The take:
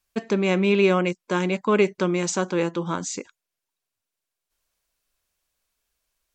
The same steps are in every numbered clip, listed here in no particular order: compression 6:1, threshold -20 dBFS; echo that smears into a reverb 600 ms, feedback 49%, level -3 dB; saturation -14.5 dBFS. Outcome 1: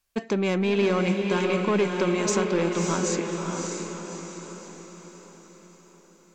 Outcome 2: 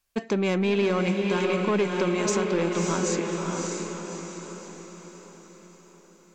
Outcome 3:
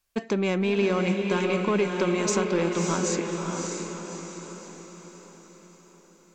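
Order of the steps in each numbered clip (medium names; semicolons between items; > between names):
saturation > compression > echo that smears into a reverb; saturation > echo that smears into a reverb > compression; compression > saturation > echo that smears into a reverb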